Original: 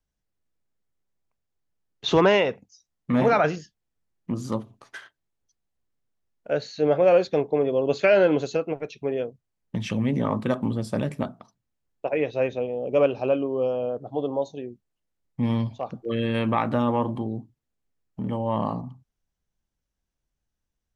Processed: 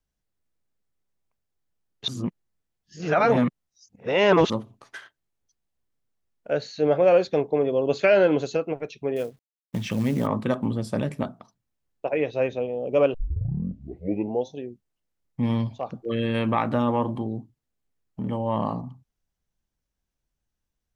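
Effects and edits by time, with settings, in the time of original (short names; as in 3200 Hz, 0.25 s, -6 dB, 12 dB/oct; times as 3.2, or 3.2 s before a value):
2.08–4.5 reverse
9.16–10.27 companded quantiser 6-bit
13.14 tape start 1.42 s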